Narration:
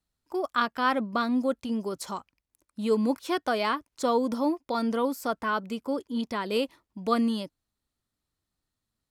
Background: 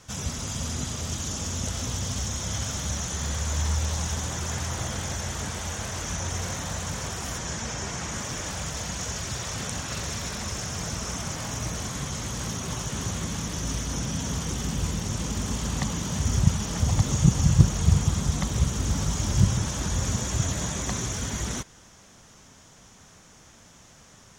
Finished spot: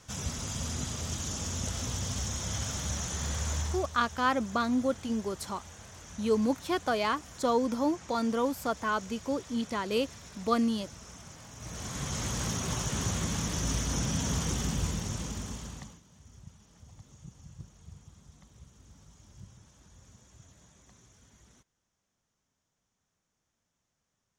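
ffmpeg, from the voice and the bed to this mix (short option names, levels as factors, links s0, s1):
-filter_complex "[0:a]adelay=3400,volume=0.794[s0];[1:a]volume=3.76,afade=t=out:st=3.51:d=0.39:silence=0.237137,afade=t=in:st=11.56:d=0.67:silence=0.16788,afade=t=out:st=14.47:d=1.54:silence=0.0354813[s1];[s0][s1]amix=inputs=2:normalize=0"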